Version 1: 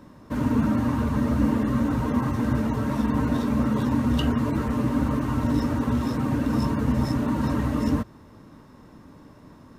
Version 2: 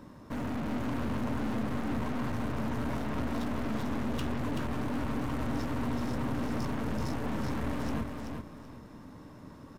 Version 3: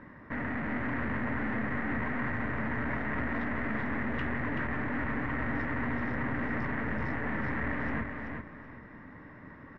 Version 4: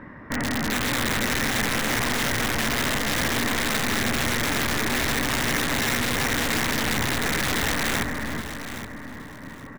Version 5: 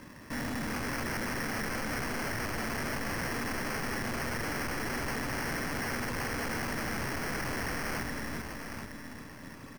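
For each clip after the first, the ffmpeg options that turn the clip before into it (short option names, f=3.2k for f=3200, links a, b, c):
-filter_complex "[0:a]aeval=exprs='(tanh(44.7*val(0)+0.5)-tanh(0.5))/44.7':c=same,asplit=2[a][b];[b]aecho=0:1:381|762|1143:0.562|0.141|0.0351[c];[a][c]amix=inputs=2:normalize=0"
-af "lowpass=f=1.9k:t=q:w=6.9,volume=-1.5dB"
-filter_complex "[0:a]aeval=exprs='(mod(21.1*val(0)+1,2)-1)/21.1':c=same,asplit=2[a][b];[b]aecho=0:1:821|1642|2463:0.266|0.0665|0.0166[c];[a][c]amix=inputs=2:normalize=0,volume=8dB"
-af "acrusher=samples=12:mix=1:aa=0.000001,volume=24.5dB,asoftclip=hard,volume=-24.5dB,volume=-7dB"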